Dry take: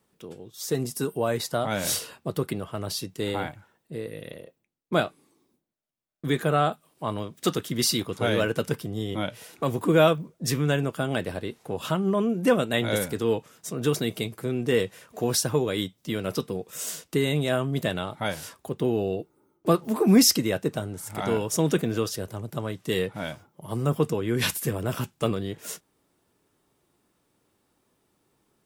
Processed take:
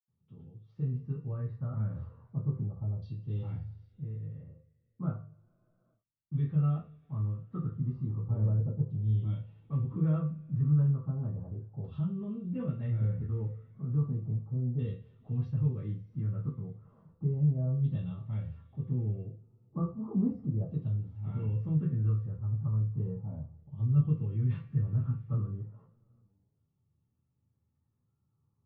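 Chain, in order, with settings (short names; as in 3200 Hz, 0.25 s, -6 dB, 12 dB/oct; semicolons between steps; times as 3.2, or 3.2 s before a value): dynamic EQ 790 Hz, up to -6 dB, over -40 dBFS, Q 1.9; LFO low-pass saw down 0.34 Hz 680–3900 Hz; reverb, pre-delay 77 ms, DRR -60 dB; gain -2 dB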